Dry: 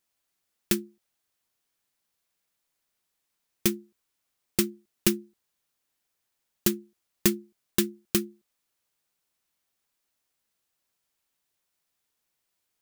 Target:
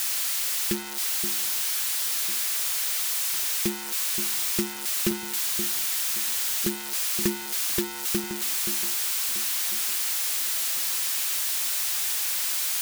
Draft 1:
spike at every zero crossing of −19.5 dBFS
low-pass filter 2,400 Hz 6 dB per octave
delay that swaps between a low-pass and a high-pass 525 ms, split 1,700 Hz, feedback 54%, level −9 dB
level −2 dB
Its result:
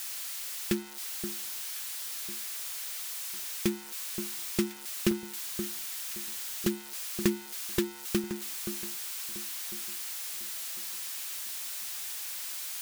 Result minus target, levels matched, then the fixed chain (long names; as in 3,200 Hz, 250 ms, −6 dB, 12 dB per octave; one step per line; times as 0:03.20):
spike at every zero crossing: distortion −9 dB
spike at every zero crossing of −8.5 dBFS
low-pass filter 2,400 Hz 6 dB per octave
delay that swaps between a low-pass and a high-pass 525 ms, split 1,700 Hz, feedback 54%, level −9 dB
level −2 dB